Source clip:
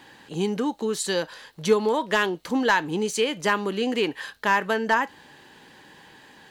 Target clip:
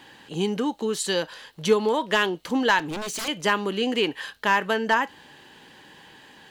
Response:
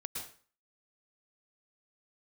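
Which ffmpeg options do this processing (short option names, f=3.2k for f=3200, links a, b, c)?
-filter_complex "[0:a]equalizer=f=3k:t=o:w=0.35:g=4.5,asettb=1/sr,asplit=3[a][b][c];[a]atrim=end=2.794[d];[b]atrim=start=2.79:end=3.28,asetpts=PTS-STARTPTS,afade=t=in:d=0.004:c=qsin,afade=t=out:st=0.486:d=0.004:c=qsin,aeval=exprs='0.0501*(abs(mod(val(0)/0.0501+3,4)-2)-1)':c=same[e];[c]atrim=start=3.276[f];[d][e]acrossfade=d=0.004:c1=hsin:c2=qsin[g];[g][f]acrossfade=d=0.004:c1=qsin:c2=hsin"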